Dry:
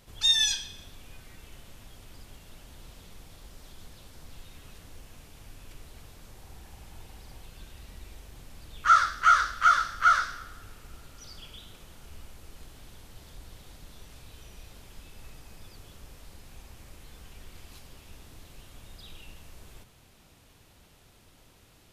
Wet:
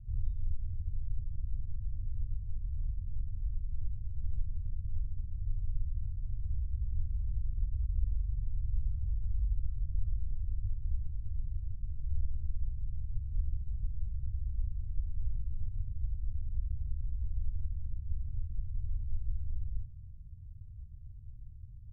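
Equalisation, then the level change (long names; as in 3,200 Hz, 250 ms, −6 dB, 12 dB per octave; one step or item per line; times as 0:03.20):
inverse Chebyshev low-pass filter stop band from 640 Hz, stop band 80 dB
+15.5 dB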